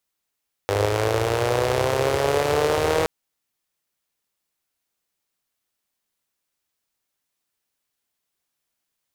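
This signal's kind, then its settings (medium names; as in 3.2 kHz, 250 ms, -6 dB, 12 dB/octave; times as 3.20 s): four-cylinder engine model, changing speed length 2.37 s, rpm 3000, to 4800, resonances 96/460 Hz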